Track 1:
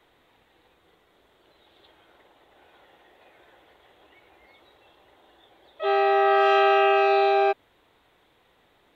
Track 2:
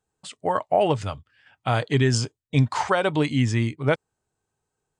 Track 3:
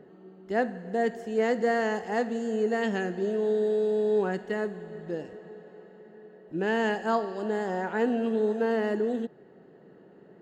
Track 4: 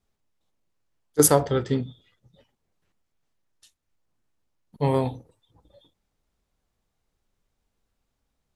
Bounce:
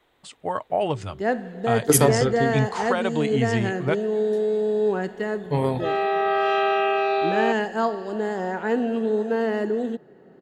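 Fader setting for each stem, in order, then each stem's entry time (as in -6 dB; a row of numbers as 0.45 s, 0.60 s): -2.5 dB, -3.5 dB, +3.0 dB, -0.5 dB; 0.00 s, 0.00 s, 0.70 s, 0.70 s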